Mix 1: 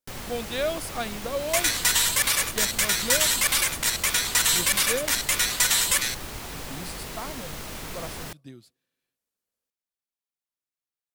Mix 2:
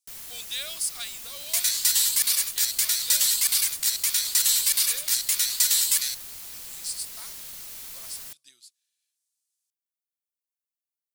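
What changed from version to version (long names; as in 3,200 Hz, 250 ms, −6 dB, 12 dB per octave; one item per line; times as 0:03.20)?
speech: add meter weighting curve ITU-R 468
second sound: add parametric band 4,500 Hz +7.5 dB 0.44 octaves
master: add first-order pre-emphasis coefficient 0.9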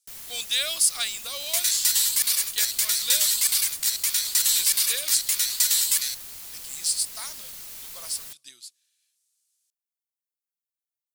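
speech +8.0 dB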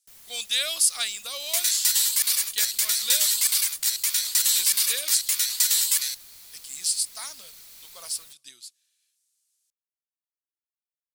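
first sound −9.5 dB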